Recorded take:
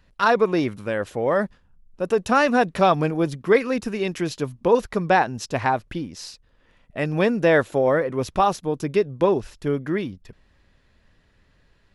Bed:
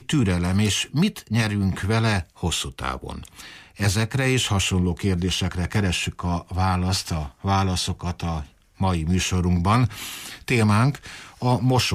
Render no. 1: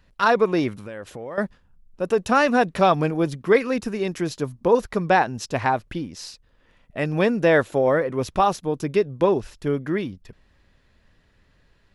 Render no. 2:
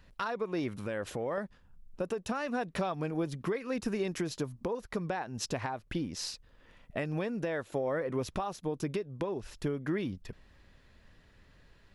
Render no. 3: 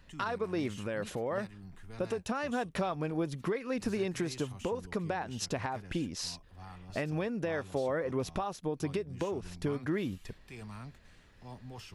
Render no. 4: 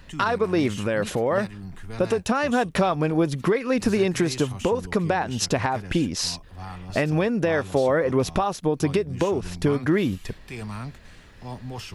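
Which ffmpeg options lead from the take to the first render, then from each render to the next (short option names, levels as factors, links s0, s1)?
-filter_complex "[0:a]asettb=1/sr,asplit=3[s0][s1][s2];[s0]atrim=end=0.774[s3];[s1]atrim=start=0.77:end=1.38,asetpts=PTS-STARTPTS,afade=t=in:d=0.004:c=qsin,afade=t=out:st=0.606:d=0.004:c=qsin,acompressor=threshold=0.0224:ratio=4:attack=3.2:release=140:knee=1:detection=peak[s4];[s2]atrim=start=1.376[s5];[s3][s4]acrossfade=d=0.004:c1=hsin:c2=qsin[s6];[s6][s5]acrossfade=d=0.004:c1=qsin:c2=hsin,asettb=1/sr,asplit=3[s7][s8][s9];[s7]atrim=end=3.874[s10];[s8]atrim=start=3.87:end=4.85,asetpts=PTS-STARTPTS,afade=t=in:d=0.004:c=qsin,afade=t=out:st=0.976:d=0.004:c=qsin,equalizer=f=2800:w=1.5:g=-4.5[s11];[s9]atrim=start=4.846[s12];[s10][s11]acrossfade=d=0.004:c1=hsin:c2=qsin[s13];[s13][s12]acrossfade=d=0.004:c1=qsin:c2=hsin"
-af "acompressor=threshold=0.0447:ratio=16,alimiter=limit=0.0794:level=0:latency=1:release=432"
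-filter_complex "[1:a]volume=0.0422[s0];[0:a][s0]amix=inputs=2:normalize=0"
-af "volume=3.76"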